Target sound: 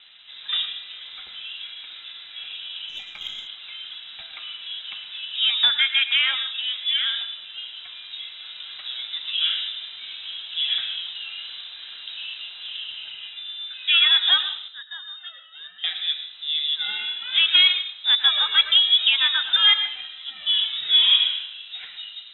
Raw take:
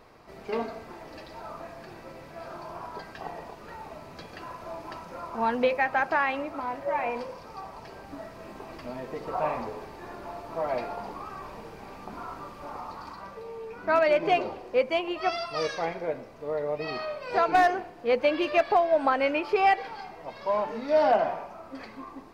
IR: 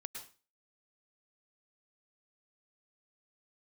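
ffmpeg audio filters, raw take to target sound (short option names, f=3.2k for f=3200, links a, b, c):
-filter_complex "[0:a]asettb=1/sr,asplit=3[a][b][c];[a]atrim=end=14.684[d];[b]atrim=start=14.68:end=15.84,asetpts=PTS-STARTPTS,afade=t=in:d=0.004:c=qsin,afade=t=out:st=1.156:d=0.004:c=qsin,asplit=3[e][f][g];[e]bandpass=f=300:t=q:w=8,volume=0dB[h];[f]bandpass=f=870:t=q:w=8,volume=-6dB[i];[g]bandpass=f=2.24k:t=q:w=8,volume=-9dB[j];[h][i][j]amix=inputs=3:normalize=0[k];[c]atrim=start=15.836[l];[d][k]acrossfade=d=0.004:c1=hsin:c2=qsin[m];[m][l]acrossfade=d=0.004:c1=qsin:c2=hsin,lowpass=f=3.4k:t=q:w=0.5098,lowpass=f=3.4k:t=q:w=0.6013,lowpass=f=3.4k:t=q:w=0.9,lowpass=f=3.4k:t=q:w=2.563,afreqshift=-4000,asplit=2[n][o];[1:a]atrim=start_sample=2205[p];[o][p]afir=irnorm=-1:irlink=0,volume=1.5dB[q];[n][q]amix=inputs=2:normalize=0,asplit=3[r][s][t];[r]afade=t=out:st=2.88:d=0.02[u];[s]aeval=exprs='0.15*(cos(1*acos(clip(val(0)/0.15,-1,1)))-cos(1*PI/2))+0.00531*(cos(3*acos(clip(val(0)/0.15,-1,1)))-cos(3*PI/2))+0.00237*(cos(5*acos(clip(val(0)/0.15,-1,1)))-cos(5*PI/2))+0.00106*(cos(7*acos(clip(val(0)/0.15,-1,1)))-cos(7*PI/2))+0.00299*(cos(8*acos(clip(val(0)/0.15,-1,1)))-cos(8*PI/2))':c=same,afade=t=in:st=2.88:d=0.02,afade=t=out:st=3.46:d=0.02[v];[t]afade=t=in:st=3.46:d=0.02[w];[u][v][w]amix=inputs=3:normalize=0"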